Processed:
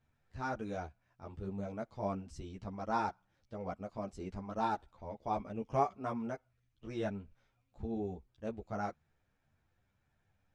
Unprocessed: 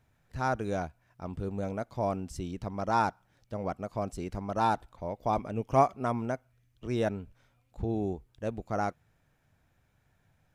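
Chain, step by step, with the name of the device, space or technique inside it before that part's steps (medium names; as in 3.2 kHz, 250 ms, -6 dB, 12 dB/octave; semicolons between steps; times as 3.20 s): string-machine ensemble chorus (three-phase chorus; low-pass 6.8 kHz 12 dB/octave); trim -4.5 dB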